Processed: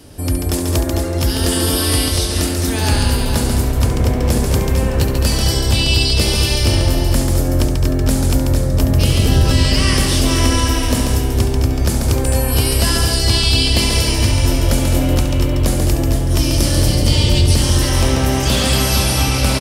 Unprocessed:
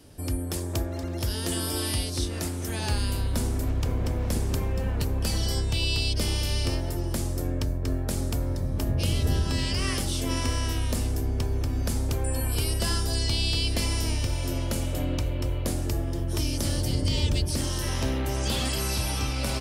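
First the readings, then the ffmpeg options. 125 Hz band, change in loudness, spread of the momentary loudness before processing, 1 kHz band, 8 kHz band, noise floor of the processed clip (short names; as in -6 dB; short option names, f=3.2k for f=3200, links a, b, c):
+12.0 dB, +12.5 dB, 4 LU, +13.0 dB, +12.5 dB, -19 dBFS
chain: -af "acontrast=81,aecho=1:1:69|139|211|459:0.335|0.562|0.376|0.447,volume=3.5dB"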